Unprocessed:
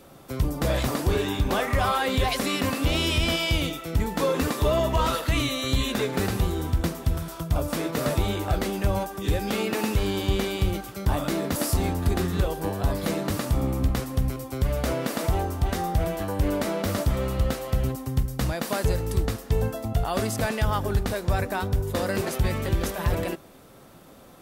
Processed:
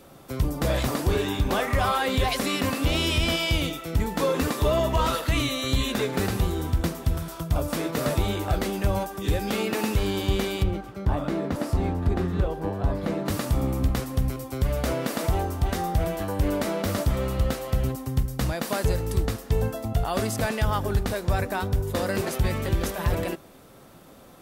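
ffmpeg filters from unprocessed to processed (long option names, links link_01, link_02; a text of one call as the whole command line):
ffmpeg -i in.wav -filter_complex "[0:a]asplit=3[link_01][link_02][link_03];[link_01]afade=type=out:start_time=10.62:duration=0.02[link_04];[link_02]lowpass=frequency=1400:poles=1,afade=type=in:start_time=10.62:duration=0.02,afade=type=out:start_time=13.25:duration=0.02[link_05];[link_03]afade=type=in:start_time=13.25:duration=0.02[link_06];[link_04][link_05][link_06]amix=inputs=3:normalize=0" out.wav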